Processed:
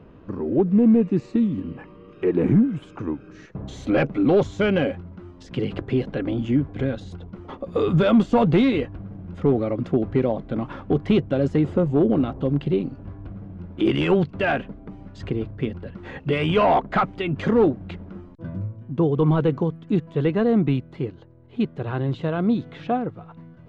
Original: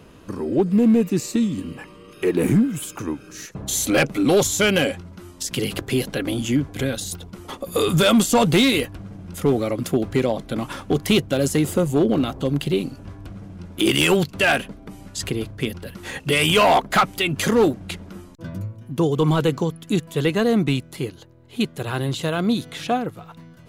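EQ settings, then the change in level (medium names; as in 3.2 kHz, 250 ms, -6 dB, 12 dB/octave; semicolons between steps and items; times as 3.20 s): tape spacing loss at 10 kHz 42 dB; +1.0 dB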